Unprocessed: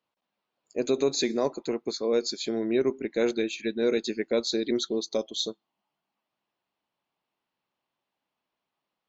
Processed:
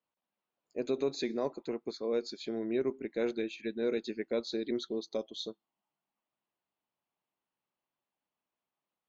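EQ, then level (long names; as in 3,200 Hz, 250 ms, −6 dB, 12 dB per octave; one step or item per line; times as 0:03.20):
high-frequency loss of the air 140 metres
−6.5 dB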